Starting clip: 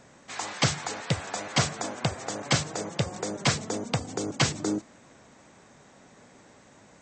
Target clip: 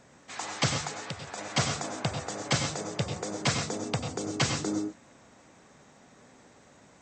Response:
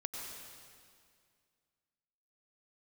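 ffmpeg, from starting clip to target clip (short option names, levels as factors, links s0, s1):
-filter_complex "[0:a]asettb=1/sr,asplit=3[s0][s1][s2];[s0]atrim=end=0.884[s3];[s1]atrim=start=0.88:end=1.38,asetpts=PTS-STARTPTS,afade=t=in:d=0.004:c=qsin,afade=t=out:st=0.496:d=0.004:c=qsin,acompressor=threshold=0.0224:ratio=4[s4];[s2]atrim=start=1.376[s5];[s3][s4]acrossfade=d=0.004:c1=hsin:c2=qsin[s6];[s6][s5]acrossfade=d=0.004:c1=qsin:c2=hsin[s7];[1:a]atrim=start_sample=2205,atrim=end_sample=6174[s8];[s7][s8]afir=irnorm=-1:irlink=0"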